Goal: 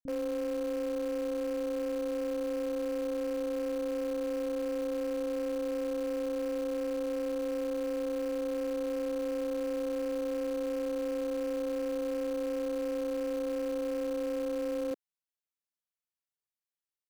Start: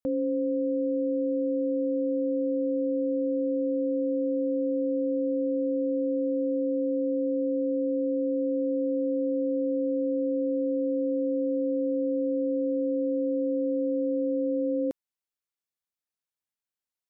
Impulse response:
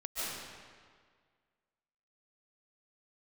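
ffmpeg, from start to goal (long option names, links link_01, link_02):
-filter_complex "[0:a]asplit=2[link_01][link_02];[link_02]acrusher=bits=5:dc=4:mix=0:aa=0.000001,volume=-11.5dB[link_03];[link_01][link_03]amix=inputs=2:normalize=0,acrossover=split=250[link_04][link_05];[link_05]adelay=30[link_06];[link_04][link_06]amix=inputs=2:normalize=0,volume=-6dB"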